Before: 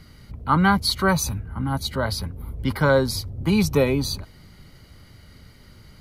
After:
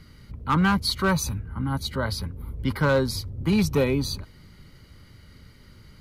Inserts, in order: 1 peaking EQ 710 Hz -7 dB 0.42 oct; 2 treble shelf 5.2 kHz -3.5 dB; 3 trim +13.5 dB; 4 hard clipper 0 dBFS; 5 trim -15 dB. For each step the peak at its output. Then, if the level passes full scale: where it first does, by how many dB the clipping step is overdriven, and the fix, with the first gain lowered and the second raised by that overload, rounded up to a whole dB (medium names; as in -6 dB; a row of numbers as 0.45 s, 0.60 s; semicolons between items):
-6.0 dBFS, -6.0 dBFS, +7.5 dBFS, 0.0 dBFS, -15.0 dBFS; step 3, 7.5 dB; step 3 +5.5 dB, step 5 -7 dB